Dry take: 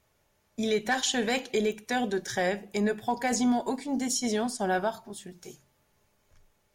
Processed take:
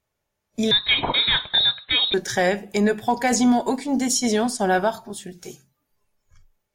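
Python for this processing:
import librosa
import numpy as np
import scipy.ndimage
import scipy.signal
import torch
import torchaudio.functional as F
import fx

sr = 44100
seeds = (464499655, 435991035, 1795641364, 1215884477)

y = fx.freq_invert(x, sr, carrier_hz=4000, at=(0.71, 2.14))
y = fx.noise_reduce_blind(y, sr, reduce_db=16)
y = y * 10.0 ** (7.5 / 20.0)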